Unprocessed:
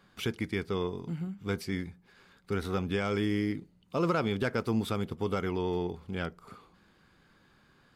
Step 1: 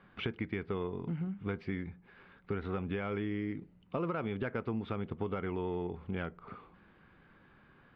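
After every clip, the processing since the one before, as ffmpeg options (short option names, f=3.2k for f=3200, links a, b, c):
-af "lowpass=f=2.8k:w=0.5412,lowpass=f=2.8k:w=1.3066,acompressor=threshold=-34dB:ratio=6,volume=2dB"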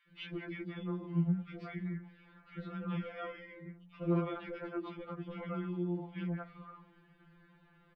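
-filter_complex "[0:a]acrossover=split=520|1700[a][b][c];[a]adelay=80[d];[b]adelay=180[e];[d][e][c]amix=inputs=3:normalize=0,afftfilt=real='re*2.83*eq(mod(b,8),0)':imag='im*2.83*eq(mod(b,8),0)':win_size=2048:overlap=0.75,volume=1dB"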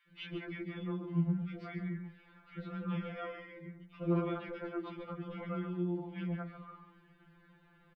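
-af "aecho=1:1:139:0.299"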